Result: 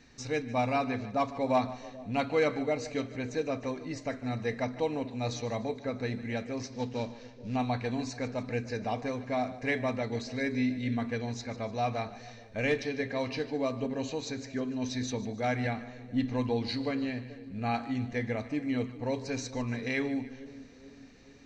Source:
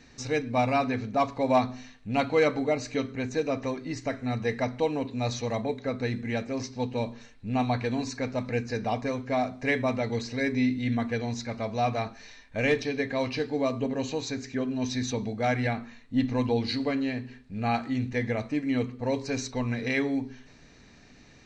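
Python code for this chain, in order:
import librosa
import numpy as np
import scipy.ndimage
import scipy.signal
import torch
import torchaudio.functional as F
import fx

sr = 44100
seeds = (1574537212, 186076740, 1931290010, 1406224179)

p1 = fx.cvsd(x, sr, bps=32000, at=(6.73, 7.56))
p2 = p1 + fx.echo_split(p1, sr, split_hz=570.0, low_ms=433, high_ms=149, feedback_pct=52, wet_db=-16.0, dry=0)
y = F.gain(torch.from_numpy(p2), -4.0).numpy()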